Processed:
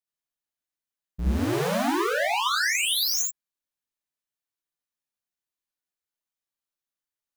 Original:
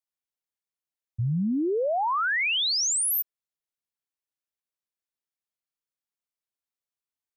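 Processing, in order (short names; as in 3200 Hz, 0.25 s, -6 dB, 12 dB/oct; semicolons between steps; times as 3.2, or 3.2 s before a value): cycle switcher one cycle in 2, inverted; non-linear reverb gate 0.1 s rising, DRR -2.5 dB; gain -4 dB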